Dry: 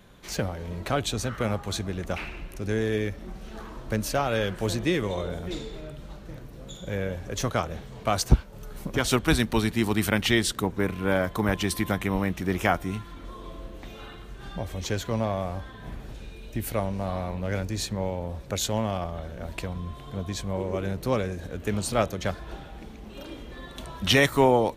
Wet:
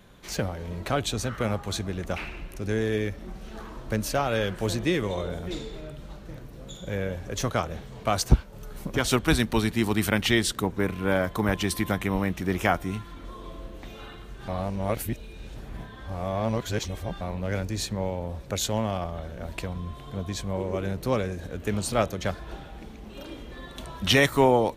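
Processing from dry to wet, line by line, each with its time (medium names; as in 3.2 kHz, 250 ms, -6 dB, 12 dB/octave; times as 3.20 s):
14.48–17.21 s: reverse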